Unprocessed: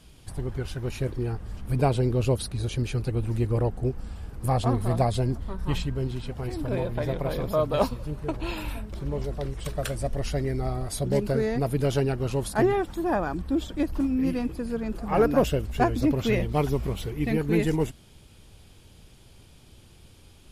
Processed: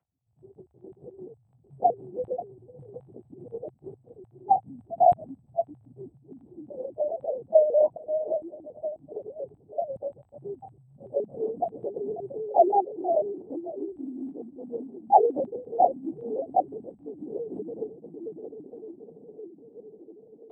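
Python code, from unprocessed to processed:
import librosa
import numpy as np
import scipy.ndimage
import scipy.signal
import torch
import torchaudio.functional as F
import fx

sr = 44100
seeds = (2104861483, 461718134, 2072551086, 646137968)

p1 = 10.0 ** (-25.0 / 20.0) * (np.abs((x / 10.0 ** (-25.0 / 20.0) + 3.0) % 4.0 - 2.0) - 1.0)
p2 = x + (p1 * 10.0 ** (-12.0 / 20.0))
p3 = scipy.signal.sosfilt(scipy.signal.butter(4, 1600.0, 'lowpass', fs=sr, output='sos'), p2)
p4 = fx.doubler(p3, sr, ms=30.0, db=-7.0)
p5 = p4 + fx.echo_diffused(p4, sr, ms=580, feedback_pct=73, wet_db=-6.0, dry=0)
p6 = fx.spec_topn(p5, sr, count=4)
p7 = fx.lpc_vocoder(p6, sr, seeds[0], excitation='whisper', order=8)
p8 = fx.highpass_res(p7, sr, hz=770.0, q=4.9)
y = p8 * 10.0 ** (4.0 / 20.0)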